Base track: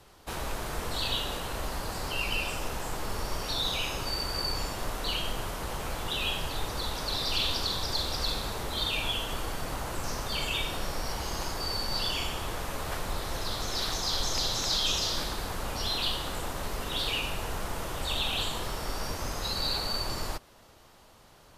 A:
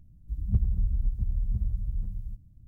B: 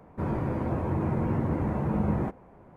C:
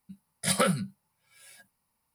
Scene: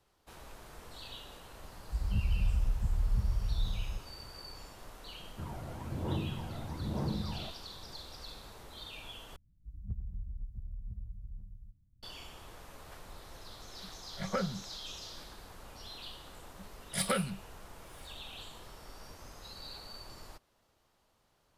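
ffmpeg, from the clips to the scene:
-filter_complex "[1:a]asplit=2[a][b];[3:a]asplit=2[c][d];[0:a]volume=-16.5dB[e];[a]alimiter=limit=-21.5dB:level=0:latency=1:release=71[f];[2:a]aphaser=in_gain=1:out_gain=1:delay=1.5:decay=0.68:speed=1.1:type=sinusoidal[g];[c]lowpass=1.6k[h];[e]asplit=2[i][j];[i]atrim=end=9.364[k];[b]atrim=end=2.67,asetpts=PTS-STARTPTS,volume=-14.5dB[l];[j]atrim=start=12.026[m];[f]atrim=end=2.67,asetpts=PTS-STARTPTS,volume=-1dB,afade=t=in:d=0.004:c=hsin,afade=t=out:st=2.666:d=0.004:c=hsin,adelay=1630[n];[g]atrim=end=2.76,asetpts=PTS-STARTPTS,volume=-15dB,afade=t=in:d=0.004:c=hsin,afade=t=out:st=2.756:d=0.004:c=hsin,adelay=5200[o];[h]atrim=end=2.14,asetpts=PTS-STARTPTS,volume=-7.5dB,afade=t=in:d=0.004:c=hsin,afade=t=out:st=2.136:d=0.004:c=hsin,adelay=13740[p];[d]atrim=end=2.14,asetpts=PTS-STARTPTS,volume=-6.5dB,afade=t=in:d=0.004:c=hsin,afade=t=out:st=2.136:d=0.004:c=hsin,adelay=16500[q];[k][l]acrossfade=d=0.004:c1=hsin:c2=hsin[r];[r][m]acrossfade=d=0.004:c1=hsin:c2=hsin[s];[s][n][o][p][q]amix=inputs=5:normalize=0"

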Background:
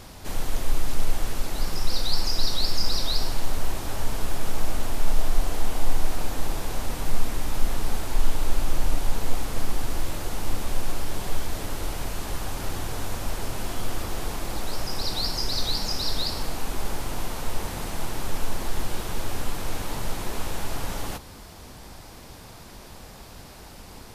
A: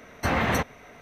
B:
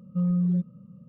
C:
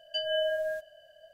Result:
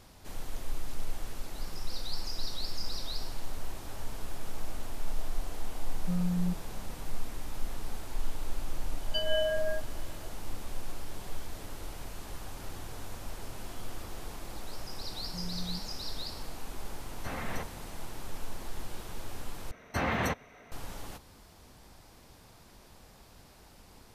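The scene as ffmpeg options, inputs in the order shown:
-filter_complex "[2:a]asplit=2[a][b];[1:a]asplit=2[c][d];[0:a]volume=-11.5dB,asplit=2[e][f];[e]atrim=end=19.714[g];[d]atrim=end=1.01,asetpts=PTS-STARTPTS,volume=-6dB[h];[f]atrim=start=20.716[i];[a]atrim=end=1.08,asetpts=PTS-STARTPTS,volume=-7dB,afade=t=in:d=0.004:c=hsin,afade=t=out:st=1.076:d=0.004:c=hsin,adelay=5920[j];[3:a]atrim=end=1.33,asetpts=PTS-STARTPTS,volume=-1dB,afade=t=in:d=0.004:c=hsin,afade=t=out:st=1.326:d=0.004:c=hsin,adelay=9000[k];[b]atrim=end=1.08,asetpts=PTS-STARTPTS,volume=-17dB,afade=t=in:d=0.004:c=hsin,afade=t=out:st=1.076:d=0.004:c=hsin,adelay=15180[l];[c]atrim=end=1.01,asetpts=PTS-STARTPTS,volume=-14.5dB,afade=t=in:d=0.004:c=hsin,afade=t=out:st=1.006:d=0.004:c=hsin,adelay=17010[m];[g][h]acrossfade=d=0.004:c1=hsin:c2=hsin[n];[n][i]acrossfade=d=0.004:c1=hsin:c2=hsin[o];[o][j][k][l][m]amix=inputs=5:normalize=0"

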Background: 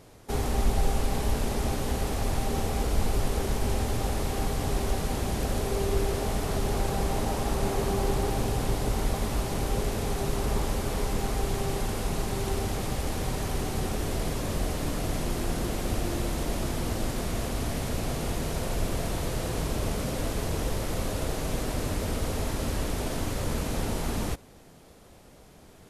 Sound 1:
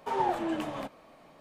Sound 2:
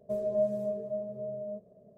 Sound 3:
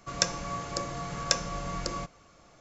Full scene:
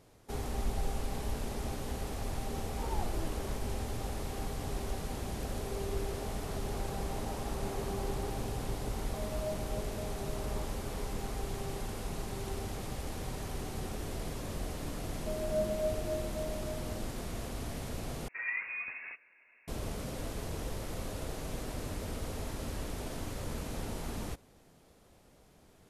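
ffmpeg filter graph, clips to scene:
-filter_complex "[1:a]asplit=2[a][b];[2:a]asplit=2[c][d];[0:a]volume=-9dB[e];[d]aecho=1:1:273:0.631[f];[b]lowpass=f=2.4k:t=q:w=0.5098,lowpass=f=2.4k:t=q:w=0.6013,lowpass=f=2.4k:t=q:w=0.9,lowpass=f=2.4k:t=q:w=2.563,afreqshift=-2800[g];[e]asplit=2[h][i];[h]atrim=end=18.284[j];[g]atrim=end=1.4,asetpts=PTS-STARTPTS,volume=-8dB[k];[i]atrim=start=19.676[l];[a]atrim=end=1.4,asetpts=PTS-STARTPTS,volume=-13.5dB,afade=t=in:d=0.004:c=hsin,afade=t=out:st=1.396:d=0.004:c=hsin,adelay=2720[m];[c]atrim=end=1.97,asetpts=PTS-STARTPTS,volume=-11dB,afade=t=in:d=0.004:c=hsin,afade=t=out:st=1.966:d=0.004:c=hsin,adelay=9070[n];[f]atrim=end=1.97,asetpts=PTS-STARTPTS,volume=-6.5dB,afade=t=in:d=0.004:c=hsin,afade=t=out:st=1.966:d=0.004:c=hsin,adelay=15170[o];[j][k]acrossfade=d=0.004:c1=hsin:c2=hsin[p];[p][l]acrossfade=d=0.004:c1=hsin:c2=hsin[q];[q][m][n][o]amix=inputs=4:normalize=0"

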